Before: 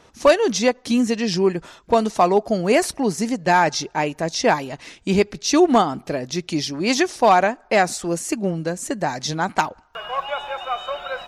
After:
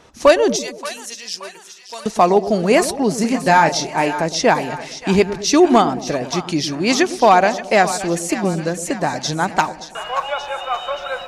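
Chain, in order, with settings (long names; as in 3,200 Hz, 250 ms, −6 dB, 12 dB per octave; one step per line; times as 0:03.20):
0:00.56–0:02.06: first difference
0:03.18–0:04.13: double-tracking delay 30 ms −8 dB
echo with a time of its own for lows and highs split 750 Hz, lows 111 ms, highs 577 ms, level −12 dB
level +3 dB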